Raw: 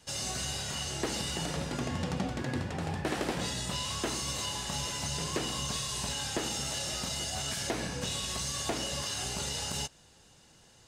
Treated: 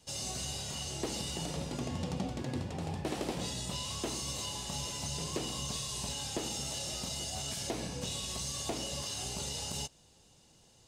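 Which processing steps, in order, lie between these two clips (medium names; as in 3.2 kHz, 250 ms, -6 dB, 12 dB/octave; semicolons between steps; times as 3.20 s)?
peaking EQ 1.6 kHz -9 dB 0.9 oct; trim -2.5 dB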